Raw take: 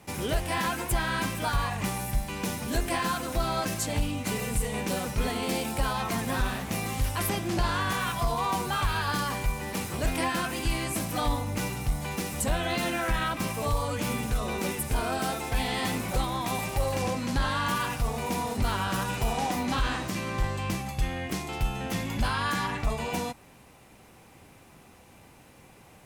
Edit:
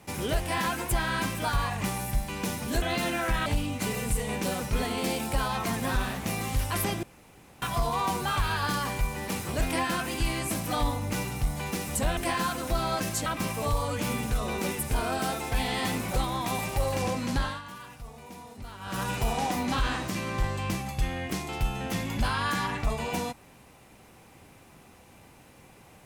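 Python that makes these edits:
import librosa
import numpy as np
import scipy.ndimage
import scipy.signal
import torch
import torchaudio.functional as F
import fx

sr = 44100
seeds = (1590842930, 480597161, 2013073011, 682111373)

y = fx.edit(x, sr, fx.swap(start_s=2.82, length_s=1.09, other_s=12.62, other_length_s=0.64),
    fx.room_tone_fill(start_s=7.48, length_s=0.59),
    fx.fade_down_up(start_s=17.36, length_s=1.7, db=-15.0, fade_s=0.26), tone=tone)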